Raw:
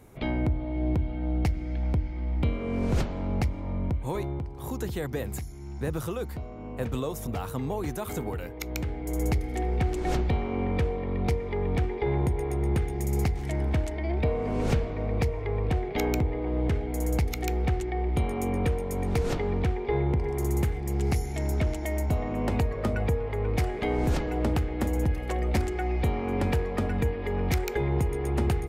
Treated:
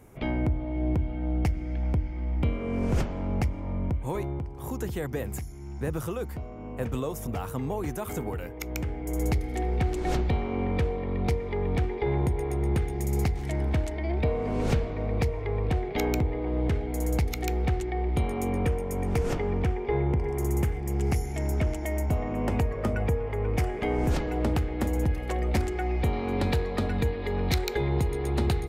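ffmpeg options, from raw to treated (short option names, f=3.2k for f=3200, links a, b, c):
-af "asetnsamples=n=441:p=0,asendcmd='9.17 equalizer g 1;18.63 equalizer g -8;24.11 equalizer g 0.5;26.13 equalizer g 12',equalizer=f=4k:t=o:w=0.37:g=-7"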